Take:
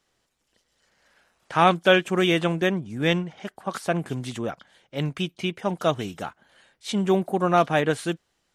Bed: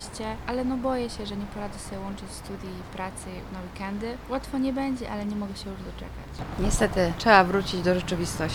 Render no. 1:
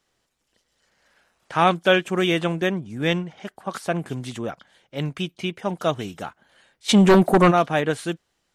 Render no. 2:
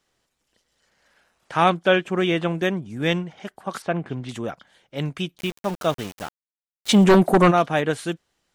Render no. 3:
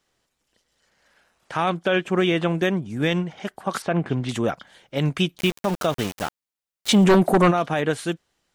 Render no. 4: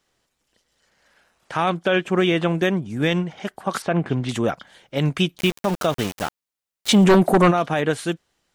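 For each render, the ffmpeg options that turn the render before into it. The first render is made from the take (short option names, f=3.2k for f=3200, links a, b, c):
-filter_complex "[0:a]asplit=3[a][b][c];[a]afade=t=out:st=6.88:d=0.02[d];[b]aeval=exprs='0.355*sin(PI/2*2.51*val(0)/0.355)':c=same,afade=t=in:st=6.88:d=0.02,afade=t=out:st=7.5:d=0.02[e];[c]afade=t=in:st=7.5:d=0.02[f];[d][e][f]amix=inputs=3:normalize=0"
-filter_complex "[0:a]asettb=1/sr,asplit=3[a][b][c];[a]atrim=end=1.704[d];[b]atrim=start=1.7:end=2.55,asetpts=PTS-STARTPTS,afade=t=in:d=0.004:c=qsin,afade=t=out:st=0.846:d=0.004:c=qsin,lowpass=f=3.2k:p=1[e];[c]atrim=start=2.546[f];[d][e]acrossfade=d=0.004:c1=hsin:c2=qsin[g];[g][f]acrossfade=d=0.004:c1=qsin:c2=hsin,asettb=1/sr,asplit=3[h][i][j];[h]atrim=end=3.824[k];[i]atrim=start=3.82:end=4.29,asetpts=PTS-STARTPTS,afade=t=in:d=0.004:c=qsin,afade=t=out:st=0.466:d=0.004:c=qsin,lowpass=3.1k[l];[j]atrim=start=4.286[m];[k][l]acrossfade=d=0.004:c1=hsin:c2=qsin[n];[n][m]acrossfade=d=0.004:c1=qsin:c2=hsin,asettb=1/sr,asplit=3[o][p][q];[o]atrim=end=5.384[r];[p]atrim=start=5.38:end=7.04,asetpts=PTS-STARTPTS,afade=t=in:d=0.004:c=qsin,afade=t=out:st=1.656:d=0.004:c=qsin,aeval=exprs='val(0)*gte(abs(val(0)),0.0251)':c=same[s];[q]atrim=start=7.036[t];[r][s]acrossfade=d=0.004:c1=hsin:c2=qsin[u];[u][t]acrossfade=d=0.004:c1=qsin:c2=hsin"
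-af "dynaudnorm=f=490:g=7:m=11.5dB,alimiter=limit=-10.5dB:level=0:latency=1:release=77"
-af "volume=1.5dB"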